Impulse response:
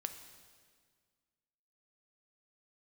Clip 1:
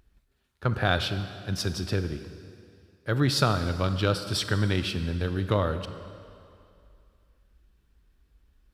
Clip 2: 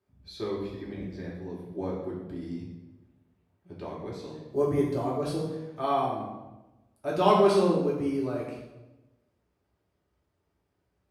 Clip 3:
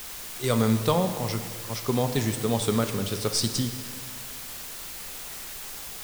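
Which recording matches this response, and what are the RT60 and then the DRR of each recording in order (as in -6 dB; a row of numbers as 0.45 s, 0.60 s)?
3; 2.5 s, 1.1 s, 1.8 s; 9.5 dB, -6.0 dB, 7.0 dB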